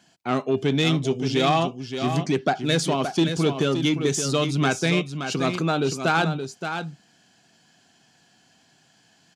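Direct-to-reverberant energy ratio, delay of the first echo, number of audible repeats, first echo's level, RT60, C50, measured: none, 0.572 s, 1, -8.0 dB, none, none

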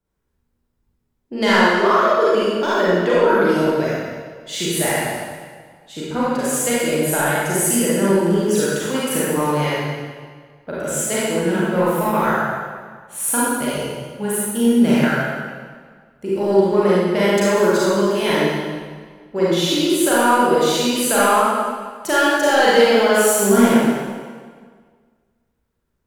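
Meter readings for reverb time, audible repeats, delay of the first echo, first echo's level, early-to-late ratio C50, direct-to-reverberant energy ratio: 1.7 s, none, none, none, -5.0 dB, -9.0 dB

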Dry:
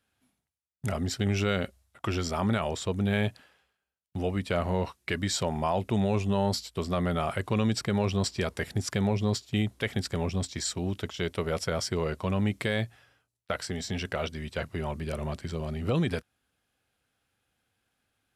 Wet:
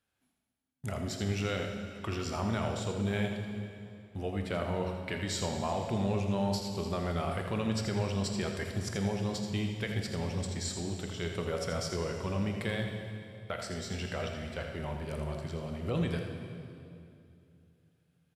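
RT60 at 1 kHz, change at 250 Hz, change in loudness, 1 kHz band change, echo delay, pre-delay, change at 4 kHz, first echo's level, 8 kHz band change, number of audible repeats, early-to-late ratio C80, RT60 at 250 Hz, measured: 2.4 s, -4.5 dB, -4.5 dB, -4.5 dB, 82 ms, 14 ms, -4.5 dB, -8.5 dB, -4.5 dB, 1, 4.0 dB, 3.1 s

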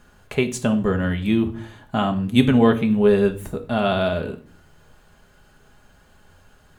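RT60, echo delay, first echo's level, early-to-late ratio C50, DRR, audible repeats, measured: 0.45 s, none, none, 14.0 dB, 4.5 dB, none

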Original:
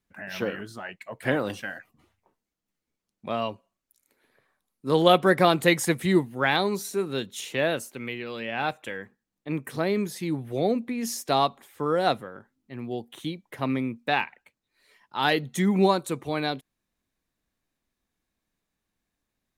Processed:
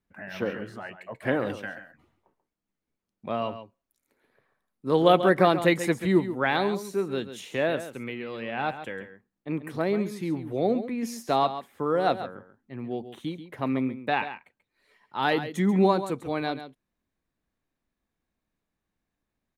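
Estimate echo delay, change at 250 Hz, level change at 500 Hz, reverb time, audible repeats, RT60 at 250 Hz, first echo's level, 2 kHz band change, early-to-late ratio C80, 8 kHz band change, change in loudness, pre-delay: 0.137 s, 0.0 dB, 0.0 dB, none, 1, none, -11.5 dB, -2.5 dB, none, -8.5 dB, -0.5 dB, none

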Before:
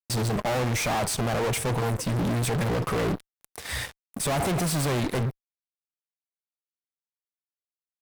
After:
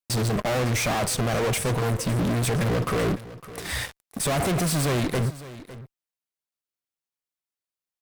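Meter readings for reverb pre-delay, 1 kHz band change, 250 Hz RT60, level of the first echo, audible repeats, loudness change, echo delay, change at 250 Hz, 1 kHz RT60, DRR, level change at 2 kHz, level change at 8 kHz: none, +0.5 dB, none, -16.5 dB, 1, +2.0 dB, 0.556 s, +2.0 dB, none, none, +2.0 dB, +2.0 dB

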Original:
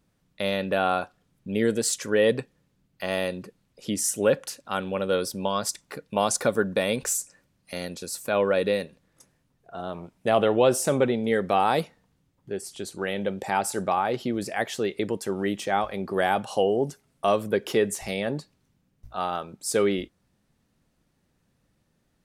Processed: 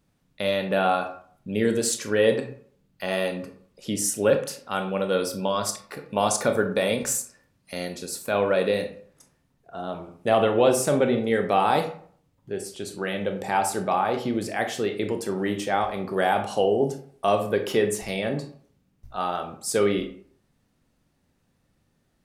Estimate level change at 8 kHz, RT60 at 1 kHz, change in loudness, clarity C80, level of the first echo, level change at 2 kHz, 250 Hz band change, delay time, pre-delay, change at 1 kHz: +0.5 dB, 0.55 s, +1.0 dB, 13.5 dB, none, +1.0 dB, +1.0 dB, none, 22 ms, +1.5 dB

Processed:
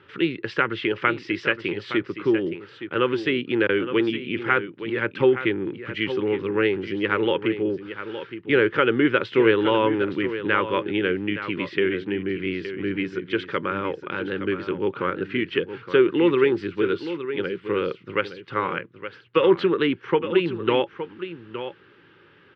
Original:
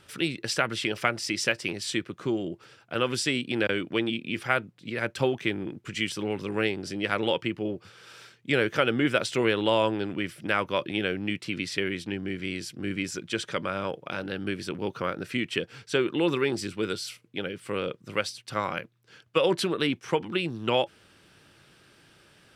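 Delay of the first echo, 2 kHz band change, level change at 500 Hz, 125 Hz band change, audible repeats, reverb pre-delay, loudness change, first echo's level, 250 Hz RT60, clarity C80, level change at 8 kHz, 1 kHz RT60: 0.867 s, +4.0 dB, +7.0 dB, +1.5 dB, 1, none, +5.0 dB, -11.0 dB, none, none, under -20 dB, none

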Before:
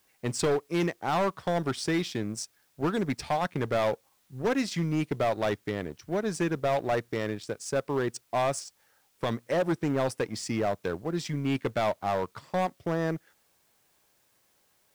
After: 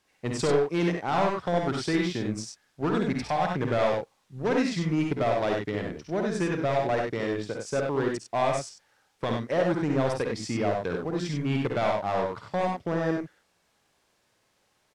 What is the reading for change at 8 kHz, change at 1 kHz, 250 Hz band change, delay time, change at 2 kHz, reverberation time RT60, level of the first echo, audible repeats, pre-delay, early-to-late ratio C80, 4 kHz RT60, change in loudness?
-2.5 dB, +2.0 dB, +2.5 dB, 52 ms, +2.0 dB, none, -7.5 dB, 2, none, none, none, +2.0 dB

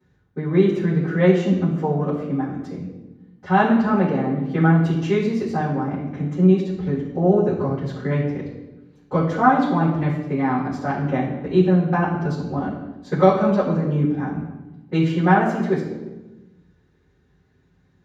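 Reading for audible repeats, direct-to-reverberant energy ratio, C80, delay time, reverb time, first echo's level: none, -12.0 dB, 7.0 dB, none, 1.1 s, none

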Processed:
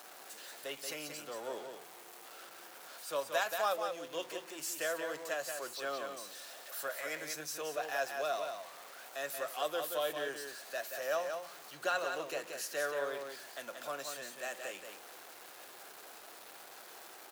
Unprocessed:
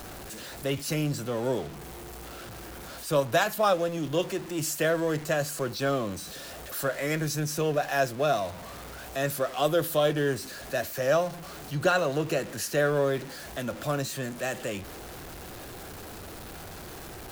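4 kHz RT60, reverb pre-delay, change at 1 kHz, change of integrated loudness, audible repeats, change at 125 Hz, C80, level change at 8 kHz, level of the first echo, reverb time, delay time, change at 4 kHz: none, none, -8.0 dB, -10.0 dB, 1, -31.0 dB, none, -7.0 dB, -6.0 dB, none, 0.18 s, -7.0 dB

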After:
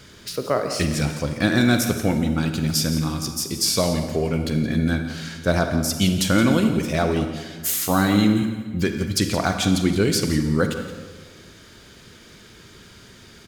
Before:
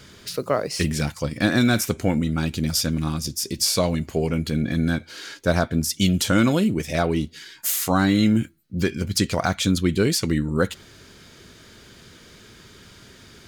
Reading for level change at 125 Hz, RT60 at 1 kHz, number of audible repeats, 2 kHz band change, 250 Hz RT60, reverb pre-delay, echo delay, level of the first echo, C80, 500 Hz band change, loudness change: +1.0 dB, 1.5 s, 1, +1.0 dB, 1.6 s, 37 ms, 0.171 s, -13.5 dB, 7.5 dB, +1.0 dB, +1.0 dB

